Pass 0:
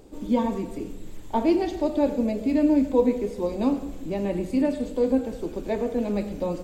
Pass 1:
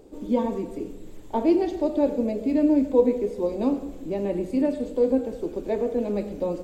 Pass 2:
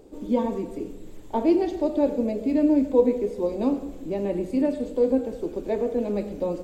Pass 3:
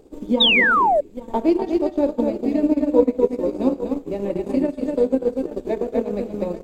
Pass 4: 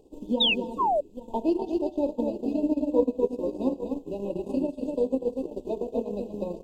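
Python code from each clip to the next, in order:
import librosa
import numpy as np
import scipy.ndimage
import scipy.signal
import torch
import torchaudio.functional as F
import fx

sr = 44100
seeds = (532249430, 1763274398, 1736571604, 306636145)

y1 = fx.peak_eq(x, sr, hz=430.0, db=7.0, octaves=1.5)
y1 = F.gain(torch.from_numpy(y1), -4.5).numpy()
y2 = y1
y3 = fx.echo_multitap(y2, sr, ms=(244, 836), db=(-3.5, -10.5))
y3 = fx.spec_paint(y3, sr, seeds[0], shape='fall', start_s=0.4, length_s=0.61, low_hz=550.0, high_hz=3900.0, level_db=-16.0)
y3 = fx.transient(y3, sr, attack_db=5, sustain_db=-11)
y4 = fx.brickwall_bandstop(y3, sr, low_hz=1100.0, high_hz=2500.0)
y4 = F.gain(torch.from_numpy(y4), -7.0).numpy()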